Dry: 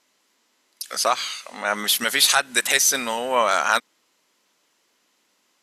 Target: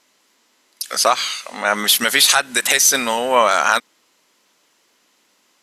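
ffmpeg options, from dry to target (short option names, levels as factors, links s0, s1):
-af "alimiter=level_in=2.24:limit=0.891:release=50:level=0:latency=1,volume=0.891"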